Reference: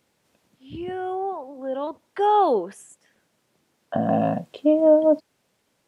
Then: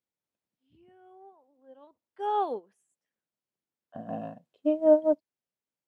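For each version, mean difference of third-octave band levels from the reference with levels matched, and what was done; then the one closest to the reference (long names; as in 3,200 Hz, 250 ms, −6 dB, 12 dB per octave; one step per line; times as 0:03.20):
6.0 dB: expander for the loud parts 2.5 to 1, over −29 dBFS
level −2.5 dB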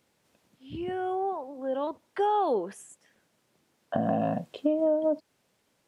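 2.5 dB: downward compressor 6 to 1, threshold −20 dBFS, peak gain reduction 9 dB
level −2 dB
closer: second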